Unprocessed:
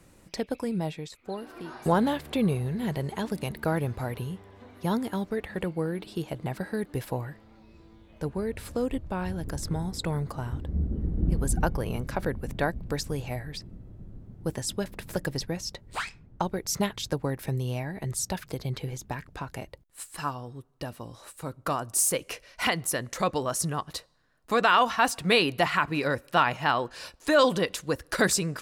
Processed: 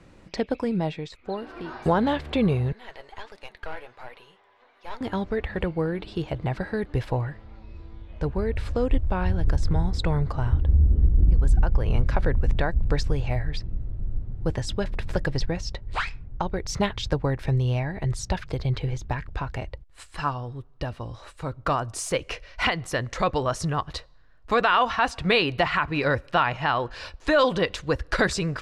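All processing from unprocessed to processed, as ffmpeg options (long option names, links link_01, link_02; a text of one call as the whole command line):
ffmpeg -i in.wav -filter_complex "[0:a]asettb=1/sr,asplit=3[link_01][link_02][link_03];[link_01]atrim=end=2.724[link_04];[link_02]atrim=start=2.72:end=5.01,asetpts=PTS-STARTPTS,afade=type=in:duration=0.004:curve=qsin,afade=type=out:start_time=2.286:duration=0.004:curve=qsin,highpass=710,flanger=delay=3.5:depth=6.7:regen=70:speed=1.4:shape=triangular,aeval=exprs='(tanh(44.7*val(0)+0.6)-tanh(0.6))/44.7':channel_layout=same[link_05];[link_03]atrim=start=5.006[link_06];[link_04][link_05]acrossfade=duration=0.004:curve1=hsin:curve2=qsin[link_07];[link_07][link_06]acrossfade=duration=0.004:curve1=qsin:curve2=hsin,lowpass=4100,asubboost=boost=5.5:cutoff=80,alimiter=limit=-15.5dB:level=0:latency=1:release=214,volume=5dB" out.wav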